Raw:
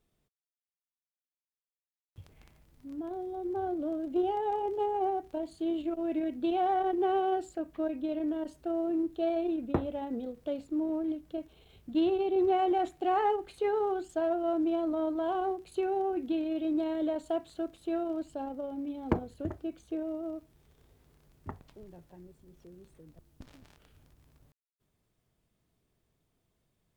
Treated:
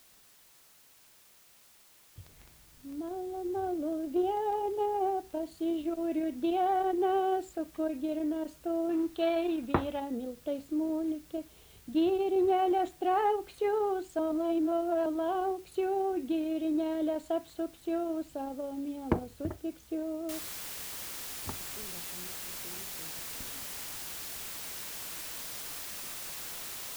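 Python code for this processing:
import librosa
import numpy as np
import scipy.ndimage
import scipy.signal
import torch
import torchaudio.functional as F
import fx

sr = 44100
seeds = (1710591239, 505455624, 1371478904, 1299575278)

y = fx.band_shelf(x, sr, hz=2000.0, db=9.0, octaves=2.7, at=(8.89, 10.0))
y = fx.noise_floor_step(y, sr, seeds[0], at_s=20.29, before_db=-60, after_db=-41, tilt_db=0.0)
y = fx.edit(y, sr, fx.reverse_span(start_s=14.19, length_s=0.87), tone=tone)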